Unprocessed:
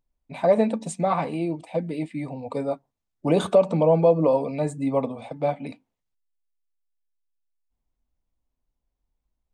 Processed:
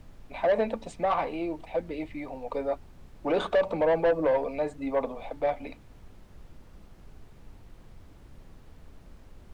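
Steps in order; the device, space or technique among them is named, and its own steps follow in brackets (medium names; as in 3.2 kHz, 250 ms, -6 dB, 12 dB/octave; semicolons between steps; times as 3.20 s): aircraft cabin announcement (band-pass 390–3600 Hz; saturation -18 dBFS, distortion -11 dB; brown noise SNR 16 dB)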